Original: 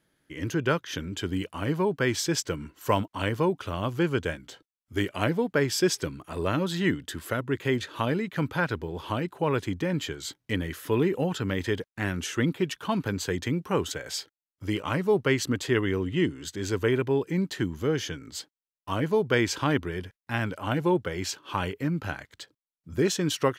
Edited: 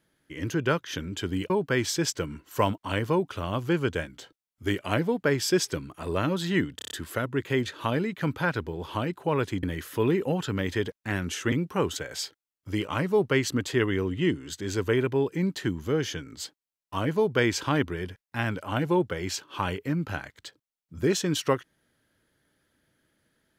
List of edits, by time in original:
0:01.50–0:01.80: remove
0:07.06: stutter 0.03 s, 6 plays
0:09.78–0:10.55: remove
0:12.44–0:13.47: remove

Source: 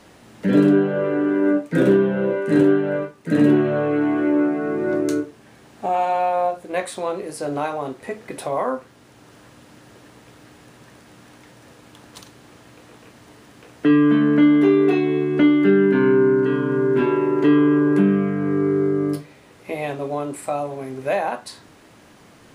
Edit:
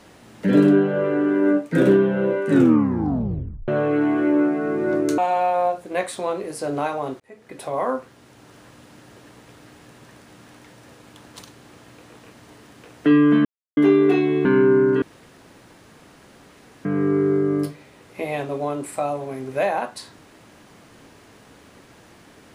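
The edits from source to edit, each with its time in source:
0:02.48: tape stop 1.20 s
0:05.18–0:05.97: remove
0:07.99–0:08.67: fade in
0:14.24–0:14.56: silence
0:15.24–0:15.95: remove
0:16.52–0:18.35: fill with room tone

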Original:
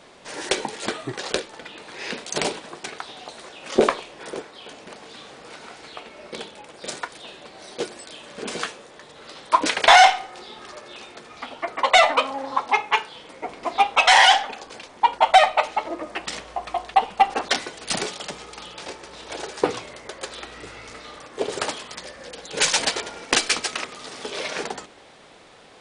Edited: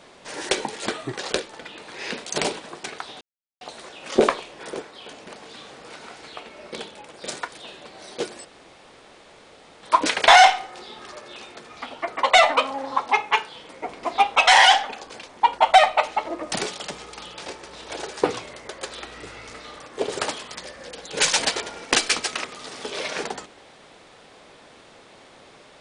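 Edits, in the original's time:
0:03.21: splice in silence 0.40 s
0:08.05–0:09.43: fill with room tone
0:16.12–0:17.92: remove

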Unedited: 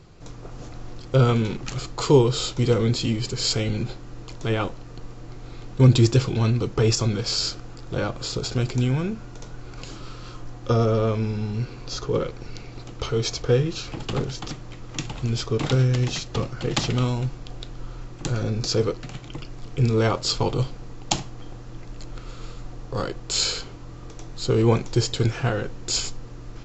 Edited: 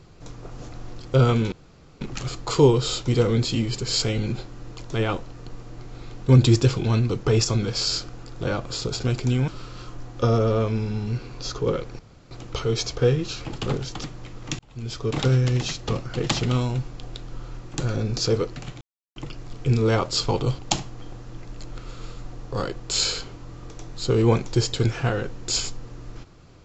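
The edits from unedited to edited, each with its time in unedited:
0:01.52: splice in room tone 0.49 s
0:08.99–0:09.95: remove
0:12.46–0:12.78: fill with room tone
0:15.06–0:15.67: fade in
0:19.28: splice in silence 0.35 s
0:20.71–0:20.99: remove

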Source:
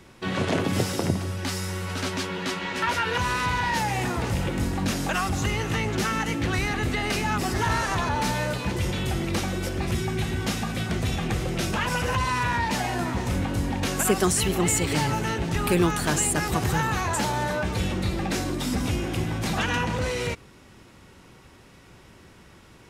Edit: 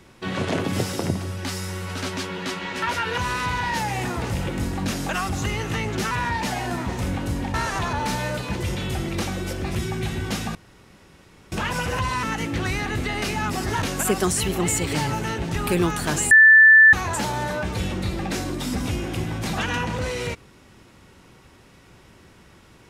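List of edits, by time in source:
0:06.11–0:07.70: swap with 0:12.39–0:13.82
0:10.71–0:11.68: fill with room tone
0:16.31–0:16.93: beep over 1,760 Hz −7.5 dBFS

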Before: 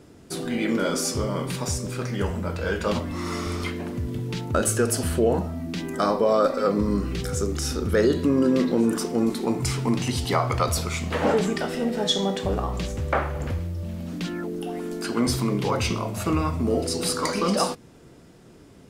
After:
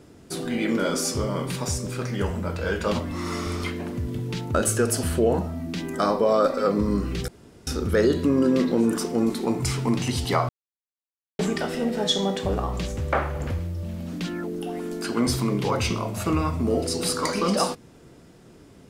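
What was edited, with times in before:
0:07.28–0:07.67: fill with room tone
0:10.49–0:11.39: silence

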